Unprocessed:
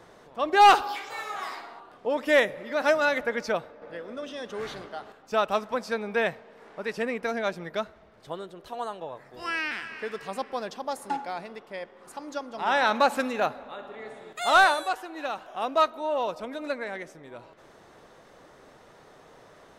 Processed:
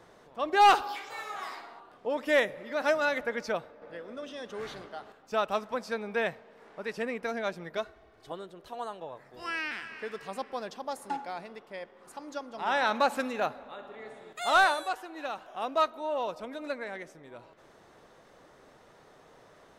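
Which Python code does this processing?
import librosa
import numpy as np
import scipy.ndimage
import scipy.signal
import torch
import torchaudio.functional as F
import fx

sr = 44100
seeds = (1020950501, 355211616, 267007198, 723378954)

y = fx.comb(x, sr, ms=2.7, depth=0.65, at=(7.77, 8.32))
y = y * librosa.db_to_amplitude(-4.0)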